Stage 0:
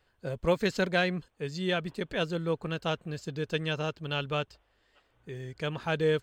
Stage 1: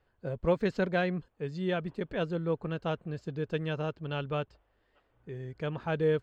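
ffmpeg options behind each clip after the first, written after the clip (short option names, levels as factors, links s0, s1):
-af "lowpass=f=1200:p=1"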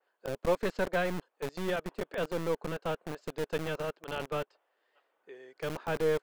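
-filter_complex "[0:a]acrossover=split=380|1300[s0][s1][s2];[s0]acrusher=bits=3:dc=4:mix=0:aa=0.000001[s3];[s3][s1][s2]amix=inputs=3:normalize=0,adynamicequalizer=threshold=0.00355:dfrequency=2500:dqfactor=0.7:tfrequency=2500:tqfactor=0.7:attack=5:release=100:ratio=0.375:range=2:mode=cutabove:tftype=highshelf"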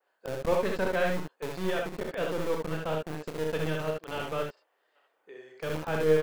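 -af "aecho=1:1:32|64|77:0.422|0.596|0.531"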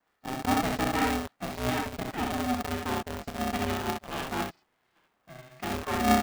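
-af "aeval=exprs='val(0)*sgn(sin(2*PI*250*n/s))':c=same"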